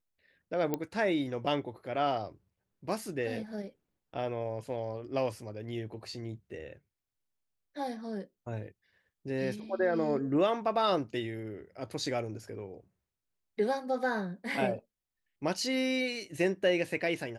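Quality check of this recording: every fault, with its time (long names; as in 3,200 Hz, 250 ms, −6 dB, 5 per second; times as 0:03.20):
0:00.74: click −17 dBFS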